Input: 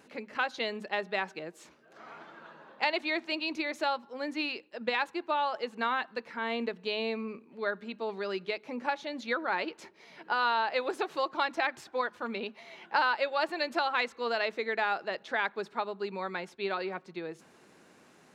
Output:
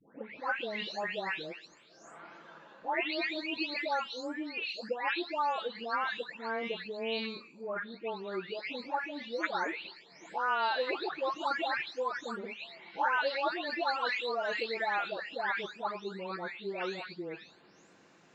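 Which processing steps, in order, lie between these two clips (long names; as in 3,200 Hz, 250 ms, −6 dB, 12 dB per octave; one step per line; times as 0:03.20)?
every frequency bin delayed by itself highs late, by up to 526 ms
elliptic low-pass filter 7,200 Hz, stop band 40 dB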